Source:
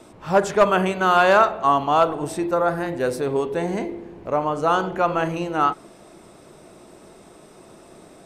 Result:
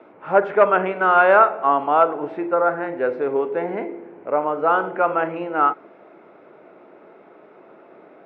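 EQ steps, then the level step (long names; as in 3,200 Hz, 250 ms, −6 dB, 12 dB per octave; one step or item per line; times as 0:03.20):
loudspeaker in its box 220–2,600 Hz, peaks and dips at 290 Hz +3 dB, 430 Hz +4 dB, 850 Hz +4 dB, 1,400 Hz +8 dB, 2,200 Hz +5 dB
parametric band 570 Hz +5 dB 0.71 octaves
−4.0 dB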